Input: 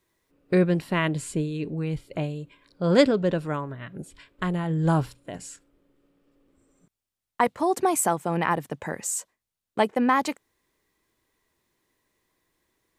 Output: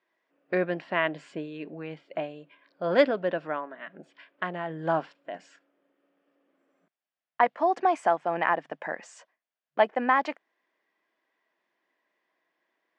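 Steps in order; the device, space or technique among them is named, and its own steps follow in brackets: FFT band-pass 140–12000 Hz; phone earpiece (speaker cabinet 350–4300 Hz, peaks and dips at 420 Hz -5 dB, 670 Hz +7 dB, 1700 Hz +5 dB, 4000 Hz -8 dB); gain -2 dB

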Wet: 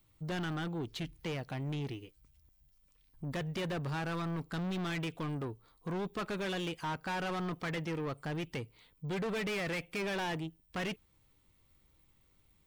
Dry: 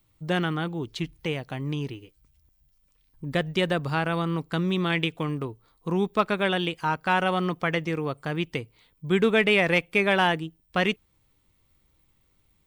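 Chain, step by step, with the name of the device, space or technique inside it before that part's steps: saturation between pre-emphasis and de-emphasis (high shelf 6000 Hz +9.5 dB; soft clip -31 dBFS, distortion -4 dB; high shelf 6000 Hz -9.5 dB); gain -2 dB

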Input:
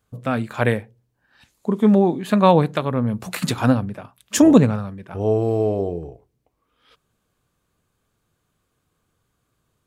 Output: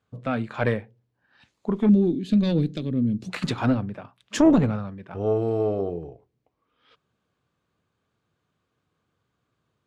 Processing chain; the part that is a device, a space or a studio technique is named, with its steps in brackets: valve radio (BPF 84–4600 Hz; tube stage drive 5 dB, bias 0.6; core saturation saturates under 220 Hz); 1.89–3.3 EQ curve 120 Hz 0 dB, 300 Hz +5 dB, 960 Hz -25 dB, 4100 Hz +2 dB

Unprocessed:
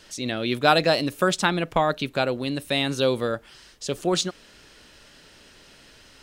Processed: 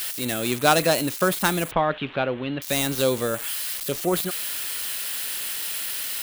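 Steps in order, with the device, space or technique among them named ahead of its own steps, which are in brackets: budget class-D amplifier (switching dead time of 0.1 ms; switching spikes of -16 dBFS); 1.71–2.62 Chebyshev low-pass 3300 Hz, order 4

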